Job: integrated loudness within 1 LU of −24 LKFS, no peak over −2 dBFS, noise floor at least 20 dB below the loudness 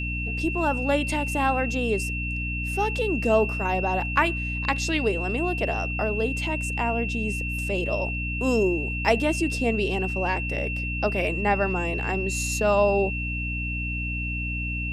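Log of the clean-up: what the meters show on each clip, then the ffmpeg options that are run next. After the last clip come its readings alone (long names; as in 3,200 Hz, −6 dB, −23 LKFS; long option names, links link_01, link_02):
mains hum 60 Hz; hum harmonics up to 300 Hz; level of the hum −28 dBFS; interfering tone 2,700 Hz; level of the tone −30 dBFS; integrated loudness −25.0 LKFS; sample peak −6.5 dBFS; target loudness −24.0 LKFS
→ -af "bandreject=frequency=60:width_type=h:width=6,bandreject=frequency=120:width_type=h:width=6,bandreject=frequency=180:width_type=h:width=6,bandreject=frequency=240:width_type=h:width=6,bandreject=frequency=300:width_type=h:width=6"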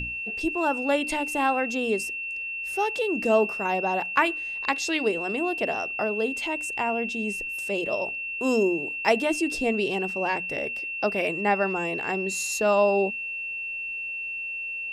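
mains hum none found; interfering tone 2,700 Hz; level of the tone −30 dBFS
→ -af "bandreject=frequency=2700:width=30"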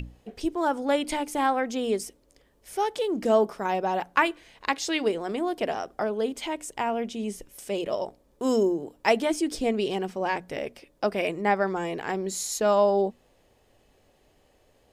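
interfering tone none found; integrated loudness −27.0 LKFS; sample peak −6.5 dBFS; target loudness −24.0 LKFS
→ -af "volume=3dB"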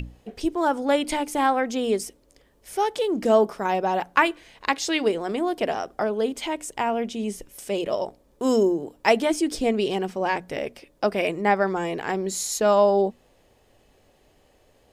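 integrated loudness −24.0 LKFS; sample peak −3.5 dBFS; background noise floor −61 dBFS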